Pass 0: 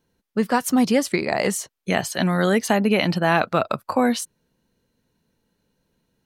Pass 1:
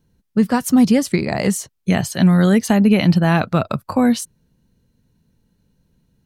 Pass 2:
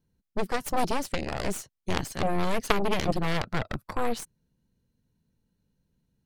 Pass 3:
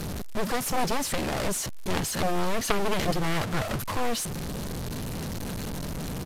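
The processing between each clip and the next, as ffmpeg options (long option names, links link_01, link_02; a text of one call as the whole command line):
ffmpeg -i in.wav -af "bass=frequency=250:gain=14,treble=frequency=4000:gain=3,volume=-1dB" out.wav
ffmpeg -i in.wav -af "aeval=exprs='0.841*(cos(1*acos(clip(val(0)/0.841,-1,1)))-cos(1*PI/2))+0.376*(cos(3*acos(clip(val(0)/0.841,-1,1)))-cos(3*PI/2))+0.0531*(cos(8*acos(clip(val(0)/0.841,-1,1)))-cos(8*PI/2))':channel_layout=same,volume=-2.5dB" out.wav
ffmpeg -i in.wav -af "aeval=exprs='val(0)+0.5*0.0668*sgn(val(0))':channel_layout=same,aresample=32000,aresample=44100,volume=-3dB" out.wav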